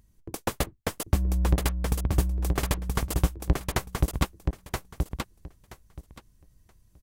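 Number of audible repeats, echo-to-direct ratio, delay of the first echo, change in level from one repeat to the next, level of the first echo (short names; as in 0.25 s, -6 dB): 3, -4.0 dB, 0.976 s, -15.5 dB, -4.0 dB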